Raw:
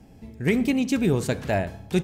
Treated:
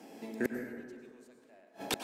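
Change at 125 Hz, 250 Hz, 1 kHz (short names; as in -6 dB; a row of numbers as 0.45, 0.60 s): -27.0, -17.5, -12.5 dB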